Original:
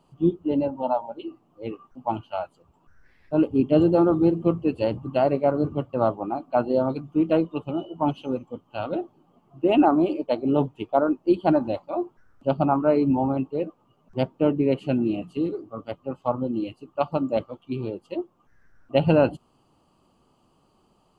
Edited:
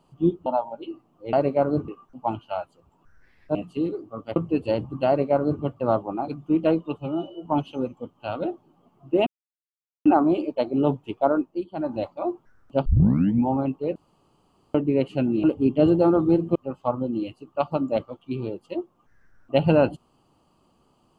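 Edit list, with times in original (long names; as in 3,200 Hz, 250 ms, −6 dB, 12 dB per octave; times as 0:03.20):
0:00.46–0:00.83: remove
0:03.37–0:04.49: swap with 0:15.15–0:15.96
0:05.20–0:05.75: duplicate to 0:01.70
0:06.41–0:06.94: remove
0:07.65–0:07.96: time-stretch 1.5×
0:09.77: splice in silence 0.79 s
0:11.09–0:11.74: duck −12 dB, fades 0.25 s
0:12.57: tape start 0.60 s
0:13.67–0:14.46: fill with room tone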